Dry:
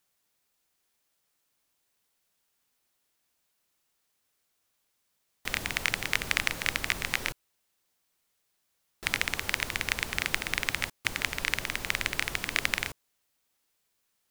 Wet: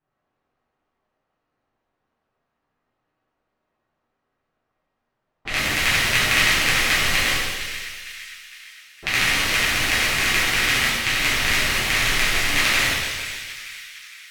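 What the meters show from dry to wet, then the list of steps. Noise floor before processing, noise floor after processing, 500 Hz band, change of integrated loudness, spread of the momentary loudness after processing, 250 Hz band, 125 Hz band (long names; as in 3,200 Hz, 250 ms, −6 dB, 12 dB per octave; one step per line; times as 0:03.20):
−77 dBFS, −78 dBFS, +11.5 dB, +11.0 dB, 17 LU, +11.5 dB, +11.5 dB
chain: low-pass that shuts in the quiet parts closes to 1,100 Hz, open at −32.5 dBFS
echo with a time of its own for lows and highs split 1,500 Hz, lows 140 ms, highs 459 ms, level −11 dB
reverb with rising layers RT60 1.1 s, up +7 semitones, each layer −8 dB, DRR −10.5 dB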